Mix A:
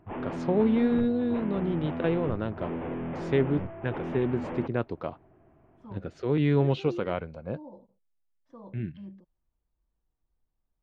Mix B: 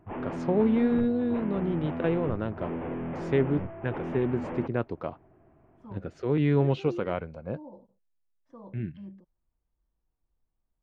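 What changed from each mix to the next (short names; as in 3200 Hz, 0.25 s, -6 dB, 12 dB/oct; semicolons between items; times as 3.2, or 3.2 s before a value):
master: add bell 3800 Hz -4.5 dB 0.74 oct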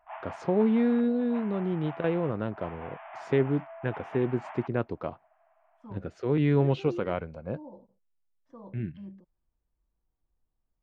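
background: add brick-wall FIR high-pass 600 Hz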